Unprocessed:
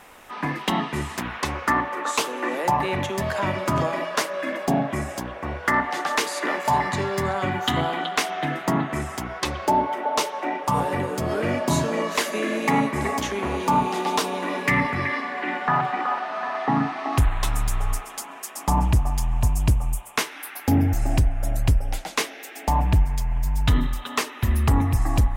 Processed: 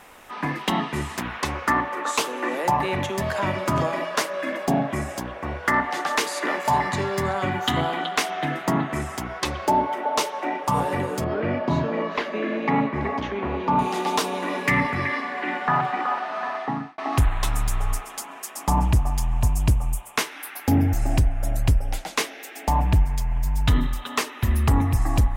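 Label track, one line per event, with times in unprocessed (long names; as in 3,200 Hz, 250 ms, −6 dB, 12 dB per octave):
11.240000	13.790000	high-frequency loss of the air 300 metres
16.480000	16.980000	fade out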